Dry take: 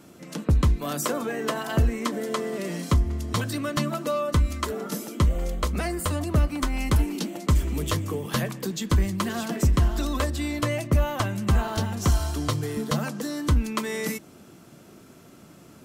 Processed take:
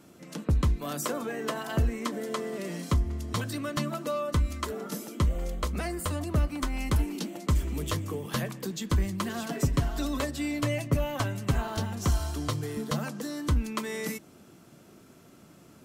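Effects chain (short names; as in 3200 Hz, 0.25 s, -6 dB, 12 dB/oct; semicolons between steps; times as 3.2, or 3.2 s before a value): 9.46–11.58 comb 7.2 ms, depth 59%; gain -4.5 dB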